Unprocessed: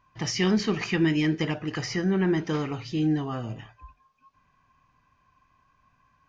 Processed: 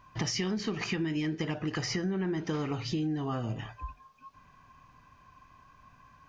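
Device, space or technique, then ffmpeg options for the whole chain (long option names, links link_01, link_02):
serial compression, leveller first: -af "acompressor=threshold=-26dB:ratio=2,acompressor=threshold=-39dB:ratio=4,equalizer=frequency=2200:width=1.5:gain=-2,volume=8dB"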